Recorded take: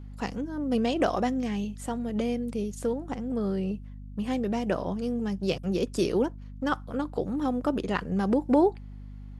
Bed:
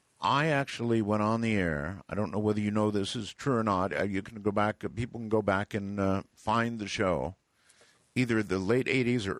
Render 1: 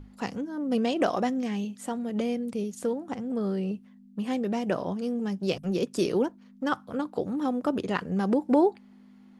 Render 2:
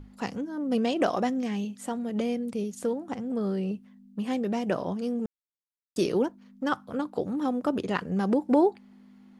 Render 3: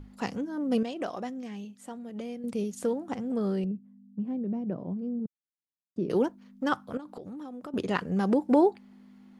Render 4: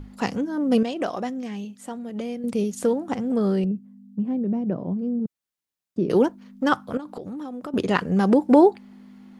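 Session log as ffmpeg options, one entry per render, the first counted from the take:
ffmpeg -i in.wav -af "bandreject=frequency=50:width_type=h:width=6,bandreject=frequency=100:width_type=h:width=6,bandreject=frequency=150:width_type=h:width=6" out.wav
ffmpeg -i in.wav -filter_complex "[0:a]asplit=3[link_01][link_02][link_03];[link_01]atrim=end=5.26,asetpts=PTS-STARTPTS,afade=type=out:start_time=5.256:duration=0.004:curve=hsin[link_04];[link_02]atrim=start=5.26:end=5.96,asetpts=PTS-STARTPTS,volume=0[link_05];[link_03]atrim=start=5.96,asetpts=PTS-STARTPTS,afade=type=in:duration=0.004:curve=hsin[link_06];[link_04][link_05][link_06]concat=n=3:v=0:a=1" out.wav
ffmpeg -i in.wav -filter_complex "[0:a]asettb=1/sr,asplit=3[link_01][link_02][link_03];[link_01]atrim=end=3.644[link_04];[link_02]atrim=start=3.64:end=6.1,asetpts=PTS-STARTPTS,afade=type=in:duration=0.004:curve=qsin,afade=type=out:start_time=2.456:duration=0.004:curve=qsin,bandpass=frequency=170:width_type=q:width=1.1[link_05];[link_03]atrim=start=6.096[link_06];[link_04][link_05]acrossfade=duration=0.004:curve1=hsin:curve2=qsin[link_07];[link_07][link_06]acrossfade=duration=0.004:curve1=qsin:curve2=hsin,asettb=1/sr,asplit=3[link_08][link_09][link_10];[link_08]atrim=end=6.974[link_11];[link_09]atrim=start=6.97:end=7.74,asetpts=PTS-STARTPTS,afade=type=in:duration=0.004:curve=qsin,afade=type=out:start_time=0.766:duration=0.004:curve=qsin,acompressor=threshold=-37dB:ratio=16:attack=3.2:release=140:knee=1:detection=peak[link_12];[link_10]atrim=start=7.736[link_13];[link_11][link_12]acrossfade=duration=0.004:curve1=hsin:curve2=qsin[link_14];[link_14][link_13]acrossfade=duration=0.004:curve1=qsin:curve2=hsin,asplit=3[link_15][link_16][link_17];[link_15]atrim=end=0.832[link_18];[link_16]atrim=start=0.828:end=2.442,asetpts=PTS-STARTPTS,volume=-9dB[link_19];[link_17]atrim=start=2.438[link_20];[link_18][link_19]acrossfade=duration=0.004:curve1=hsin:curve2=hsin[link_21];[link_21][link_20]acrossfade=duration=0.004:curve1=hsin:curve2=hsin" out.wav
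ffmpeg -i in.wav -af "volume=7dB" out.wav

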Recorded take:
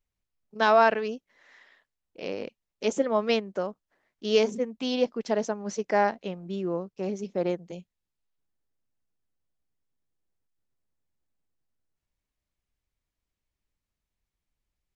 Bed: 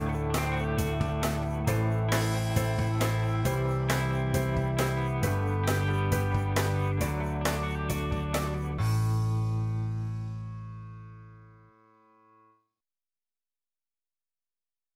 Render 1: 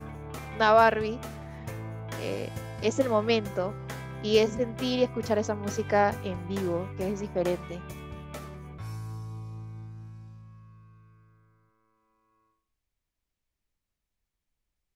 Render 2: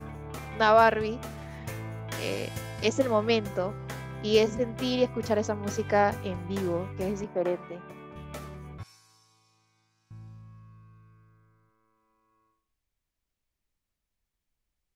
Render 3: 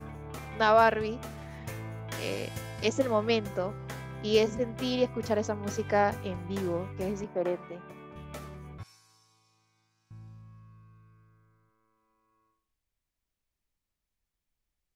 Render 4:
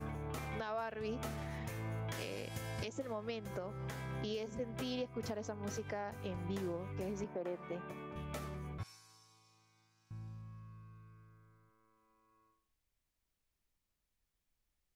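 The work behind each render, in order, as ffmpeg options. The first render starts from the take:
ffmpeg -i in.wav -i bed.wav -filter_complex "[1:a]volume=-11dB[link_01];[0:a][link_01]amix=inputs=2:normalize=0" out.wav
ffmpeg -i in.wav -filter_complex "[0:a]asplit=3[link_01][link_02][link_03];[link_01]afade=type=out:start_time=1.37:duration=0.02[link_04];[link_02]adynamicequalizer=threshold=0.00355:dfrequency=1600:dqfactor=0.7:tfrequency=1600:tqfactor=0.7:attack=5:release=100:ratio=0.375:range=3:mode=boostabove:tftype=highshelf,afade=type=in:start_time=1.37:duration=0.02,afade=type=out:start_time=2.88:duration=0.02[link_05];[link_03]afade=type=in:start_time=2.88:duration=0.02[link_06];[link_04][link_05][link_06]amix=inputs=3:normalize=0,asettb=1/sr,asplit=3[link_07][link_08][link_09];[link_07]atrim=end=7.244[link_10];[link_08]atrim=start=7.24:end=8.16,asetpts=PTS-STARTPTS,afade=type=in:duration=0.004:curve=qsin,afade=type=out:start_time=0.916:duration=0.004:curve=qsin,acrossover=split=170 2500:gain=0.0631 1 0.178[link_11][link_12][link_13];[link_11][link_12][link_13]amix=inputs=3:normalize=0[link_14];[link_09]atrim=start=8.156[link_15];[link_10][link_14]acrossfade=duration=0.004:curve1=hsin:curve2=qsin[link_16];[link_16][link_15]acrossfade=duration=0.004:curve1=qsin:curve2=hsin,asettb=1/sr,asplit=3[link_17][link_18][link_19];[link_17]atrim=end=8.834[link_20];[link_18]atrim=start=8.83:end=10.11,asetpts=PTS-STARTPTS,afade=type=in:duration=0.004:curve=qsin,afade=type=out:start_time=1.276:duration=0.004:curve=qsin,bandpass=frequency=5300:width_type=q:width=1[link_21];[link_19]atrim=start=10.106[link_22];[link_20][link_21]acrossfade=duration=0.004:curve1=hsin:curve2=qsin[link_23];[link_23][link_22]acrossfade=duration=0.004:curve1=qsin:curve2=hsin" out.wav
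ffmpeg -i in.wav -af "volume=-2dB" out.wav
ffmpeg -i in.wav -af "acompressor=threshold=-34dB:ratio=5,alimiter=level_in=6.5dB:limit=-24dB:level=0:latency=1:release=257,volume=-6.5dB" out.wav

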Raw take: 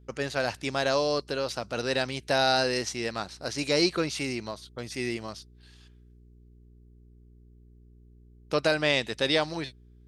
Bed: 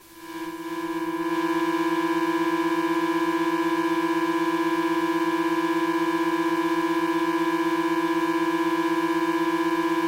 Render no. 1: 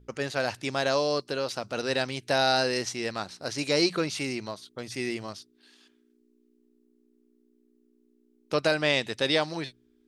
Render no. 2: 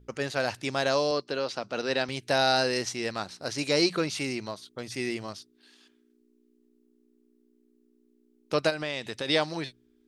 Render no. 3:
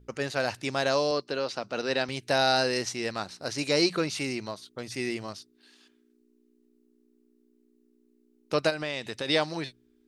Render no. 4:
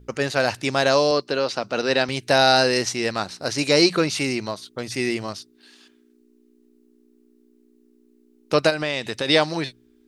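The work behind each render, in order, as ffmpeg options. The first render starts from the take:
ffmpeg -i in.wav -af "bandreject=frequency=60:width_type=h:width=4,bandreject=frequency=120:width_type=h:width=4,bandreject=frequency=180:width_type=h:width=4" out.wav
ffmpeg -i in.wav -filter_complex "[0:a]asettb=1/sr,asplit=3[link_01][link_02][link_03];[link_01]atrim=end=1.114[link_04];[link_02]atrim=start=1.11:end=2.09,asetpts=PTS-STARTPTS,afade=type=in:duration=0.004:curve=qsin,afade=type=out:start_time=0.976:duration=0.004:curve=qsin,highpass=150,lowpass=5700[link_05];[link_03]atrim=start=2.086[link_06];[link_04][link_05]acrossfade=duration=0.004:curve1=hsin:curve2=qsin[link_07];[link_07][link_06]acrossfade=duration=0.004:curve1=qsin:curve2=hsin,asplit=3[link_08][link_09][link_10];[link_08]afade=type=out:start_time=8.69:duration=0.02[link_11];[link_09]acompressor=threshold=-31dB:ratio=2.5:attack=3.2:release=140:knee=1:detection=peak,afade=type=in:start_time=8.69:duration=0.02,afade=type=out:start_time=9.27:duration=0.02[link_12];[link_10]afade=type=in:start_time=9.27:duration=0.02[link_13];[link_11][link_12][link_13]amix=inputs=3:normalize=0" out.wav
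ffmpeg -i in.wav -af "bandreject=frequency=3300:width=28" out.wav
ffmpeg -i in.wav -af "volume=7.5dB,alimiter=limit=-3dB:level=0:latency=1" out.wav

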